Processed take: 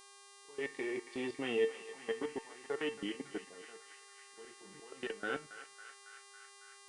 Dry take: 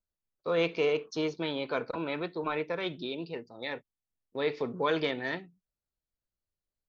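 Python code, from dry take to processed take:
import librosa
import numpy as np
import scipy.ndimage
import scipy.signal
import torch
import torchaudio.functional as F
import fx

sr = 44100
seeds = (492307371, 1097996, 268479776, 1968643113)

y = fx.pitch_heads(x, sr, semitones=-3.5)
y = scipy.signal.sosfilt(scipy.signal.butter(2, 220.0, 'highpass', fs=sr, output='sos'), y)
y = fx.env_lowpass(y, sr, base_hz=600.0, full_db=-27.0)
y = fx.auto_swell(y, sr, attack_ms=626.0)
y = fx.level_steps(y, sr, step_db=20)
y = y + 10.0 ** (-66.0 / 20.0) * np.sin(2.0 * np.pi * 1100.0 * np.arange(len(y)) / sr)
y = fx.comb_fb(y, sr, f0_hz=450.0, decay_s=0.24, harmonics='all', damping=0.0, mix_pct=80)
y = fx.dmg_buzz(y, sr, base_hz=400.0, harmonics=26, level_db=-74.0, tilt_db=-1, odd_only=False)
y = fx.echo_banded(y, sr, ms=276, feedback_pct=78, hz=1800.0, wet_db=-11.5)
y = F.gain(torch.from_numpy(y), 15.0).numpy()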